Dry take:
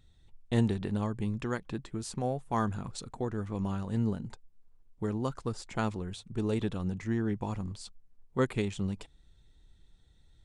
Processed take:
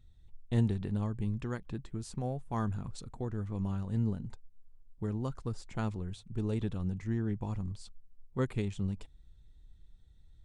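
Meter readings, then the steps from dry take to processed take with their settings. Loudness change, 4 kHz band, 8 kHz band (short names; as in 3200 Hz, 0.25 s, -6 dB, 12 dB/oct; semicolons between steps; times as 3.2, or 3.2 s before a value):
-2.0 dB, -7.0 dB, -7.0 dB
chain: low shelf 160 Hz +11.5 dB; gain -7 dB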